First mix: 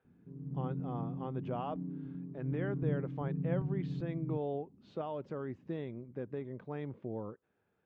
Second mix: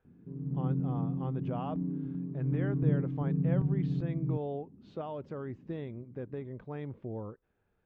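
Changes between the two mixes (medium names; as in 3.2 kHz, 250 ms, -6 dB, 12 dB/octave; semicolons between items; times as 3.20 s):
speech: remove high-pass 130 Hz; background +6.5 dB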